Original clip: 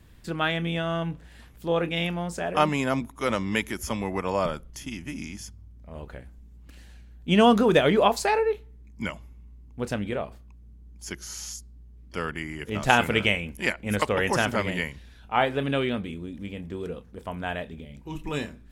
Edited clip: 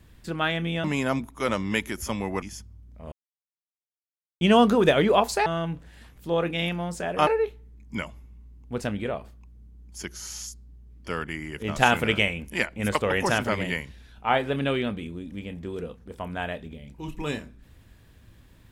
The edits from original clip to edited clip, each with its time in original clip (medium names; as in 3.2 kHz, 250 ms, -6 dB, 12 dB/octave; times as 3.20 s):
0.84–2.65 s: move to 8.34 s
4.23–5.30 s: delete
6.00–7.29 s: mute